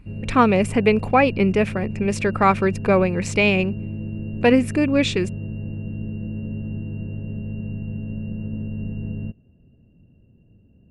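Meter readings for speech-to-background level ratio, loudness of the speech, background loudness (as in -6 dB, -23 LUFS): 11.0 dB, -19.5 LUFS, -30.5 LUFS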